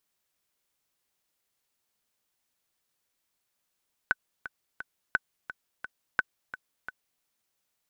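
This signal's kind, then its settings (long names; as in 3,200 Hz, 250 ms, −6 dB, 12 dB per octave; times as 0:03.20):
click track 173 BPM, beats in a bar 3, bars 3, 1,510 Hz, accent 14 dB −10 dBFS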